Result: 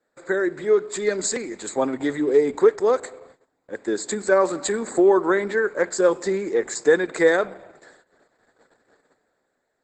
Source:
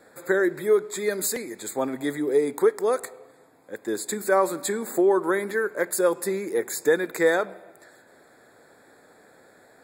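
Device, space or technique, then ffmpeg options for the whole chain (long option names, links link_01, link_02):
video call: -af "highpass=120,dynaudnorm=framelen=130:gausssize=11:maxgain=5.5dB,agate=range=-18dB:threshold=-47dB:ratio=16:detection=peak,volume=-1dB" -ar 48000 -c:a libopus -b:a 12k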